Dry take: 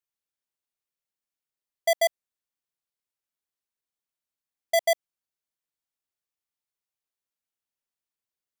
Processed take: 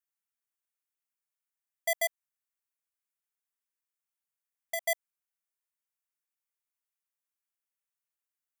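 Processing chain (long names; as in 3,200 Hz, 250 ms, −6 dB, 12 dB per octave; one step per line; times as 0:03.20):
high-pass filter 1,200 Hz 12 dB per octave
parametric band 4,100 Hz −10.5 dB 1.1 octaves
0:02.06–0:04.82: downward compressor 2.5 to 1, threshold −34 dBFS, peak gain reduction 7 dB
level +1 dB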